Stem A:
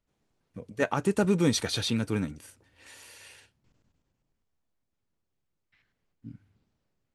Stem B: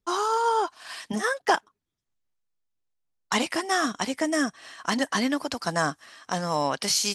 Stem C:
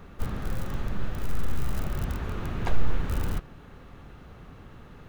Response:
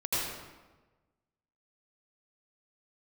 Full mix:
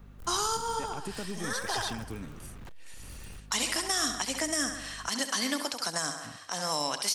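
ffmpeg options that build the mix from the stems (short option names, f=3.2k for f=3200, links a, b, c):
-filter_complex "[0:a]acompressor=threshold=-30dB:ratio=6,volume=-5.5dB,asplit=2[a][b];[1:a]highpass=f=570:p=1,adelay=200,volume=1.5dB,asplit=2[c][d];[d]volume=-11.5dB[e];[2:a]acompressor=threshold=-28dB:ratio=3,aeval=exprs='val(0)+0.0141*(sin(2*PI*50*n/s)+sin(2*PI*2*50*n/s)/2+sin(2*PI*3*50*n/s)/3+sin(2*PI*4*50*n/s)/4+sin(2*PI*5*50*n/s)/5)':c=same,asoftclip=type=hard:threshold=-30dB,volume=-11.5dB[f];[b]apad=whole_len=324115[g];[c][g]sidechaincompress=threshold=-49dB:ratio=8:attack=16:release=623[h];[e]aecho=0:1:67|134|201|268|335|402|469|536:1|0.54|0.292|0.157|0.085|0.0459|0.0248|0.0134[i];[a][h][f][i]amix=inputs=4:normalize=0,highshelf=f=5.1k:g=9,acrossover=split=310|3000[j][k][l];[k]acompressor=threshold=-30dB:ratio=6[m];[j][m][l]amix=inputs=3:normalize=0,alimiter=limit=-17.5dB:level=0:latency=1:release=136"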